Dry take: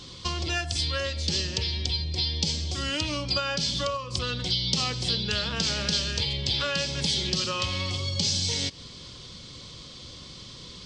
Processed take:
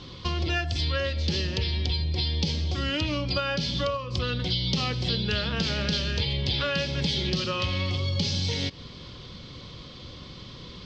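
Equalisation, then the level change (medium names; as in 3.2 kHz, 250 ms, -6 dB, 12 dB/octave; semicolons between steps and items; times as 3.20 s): distance through air 210 m; dynamic bell 990 Hz, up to -4 dB, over -44 dBFS, Q 1.4; +4.0 dB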